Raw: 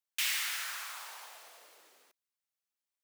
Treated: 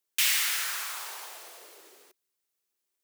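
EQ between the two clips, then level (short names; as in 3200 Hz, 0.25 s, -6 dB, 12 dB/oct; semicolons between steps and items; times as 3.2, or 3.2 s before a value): bell 380 Hz +11.5 dB 0.56 oct; high shelf 5100 Hz +5.5 dB; +4.5 dB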